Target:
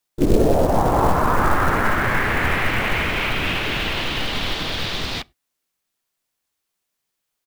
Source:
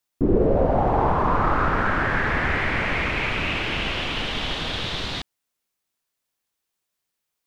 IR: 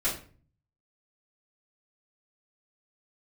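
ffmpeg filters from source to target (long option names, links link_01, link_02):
-filter_complex "[0:a]asplit=3[link_01][link_02][link_03];[link_02]asetrate=29433,aresample=44100,atempo=1.49831,volume=-9dB[link_04];[link_03]asetrate=55563,aresample=44100,atempo=0.793701,volume=-6dB[link_05];[link_01][link_04][link_05]amix=inputs=3:normalize=0,acrusher=bits=5:mode=log:mix=0:aa=0.000001,asplit=2[link_06][link_07];[1:a]atrim=start_sample=2205,afade=type=out:start_time=0.16:duration=0.01,atrim=end_sample=7497[link_08];[link_07][link_08]afir=irnorm=-1:irlink=0,volume=-31dB[link_09];[link_06][link_09]amix=inputs=2:normalize=0,volume=1dB"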